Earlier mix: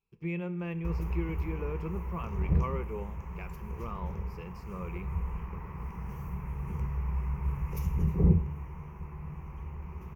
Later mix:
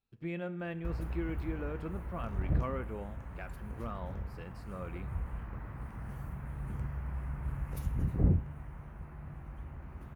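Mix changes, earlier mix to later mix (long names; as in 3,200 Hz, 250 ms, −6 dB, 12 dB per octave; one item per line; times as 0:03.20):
background: send −8.0 dB
master: remove EQ curve with evenly spaced ripples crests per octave 0.78, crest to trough 12 dB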